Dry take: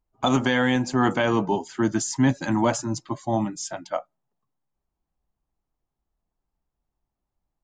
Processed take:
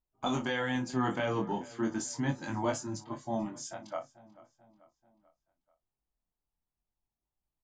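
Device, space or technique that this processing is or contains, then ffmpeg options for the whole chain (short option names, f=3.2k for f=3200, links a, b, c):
double-tracked vocal: -filter_complex "[0:a]asplit=2[a][b];[b]adelay=35,volume=-13dB[c];[a][c]amix=inputs=2:normalize=0,flanger=delay=20:depth=4.1:speed=0.38,asplit=2[d][e];[e]adelay=438,lowpass=f=4.5k:p=1,volume=-20dB,asplit=2[f][g];[g]adelay=438,lowpass=f=4.5k:p=1,volume=0.53,asplit=2[h][i];[i]adelay=438,lowpass=f=4.5k:p=1,volume=0.53,asplit=2[j][k];[k]adelay=438,lowpass=f=4.5k:p=1,volume=0.53[l];[d][f][h][j][l]amix=inputs=5:normalize=0,volume=-7dB"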